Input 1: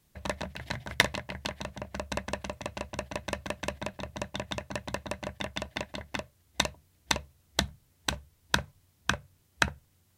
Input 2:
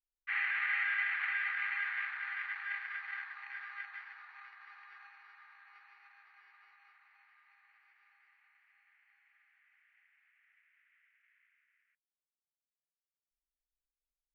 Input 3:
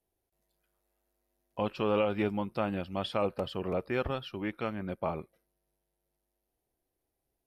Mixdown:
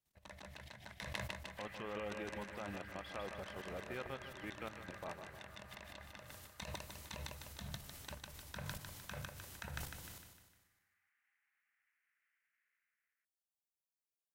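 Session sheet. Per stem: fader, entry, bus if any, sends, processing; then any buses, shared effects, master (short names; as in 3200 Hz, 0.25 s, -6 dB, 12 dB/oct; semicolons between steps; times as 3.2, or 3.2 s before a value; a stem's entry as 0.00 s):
-10.5 dB, 0.00 s, bus A, no send, echo send -12 dB, sustainer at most 32 dB/s
-1.0 dB, 1.30 s, no bus, no send, no echo send, compressor, threshold -41 dBFS, peak gain reduction 11 dB; bell 2300 Hz -13.5 dB 1.5 oct
-6.0 dB, 0.00 s, bus A, no send, echo send -14 dB, dry
bus A: 0.0 dB, level quantiser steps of 13 dB; limiter -31.5 dBFS, peak gain reduction 10.5 dB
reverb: off
echo: feedback echo 0.152 s, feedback 46%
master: low shelf 500 Hz -7 dB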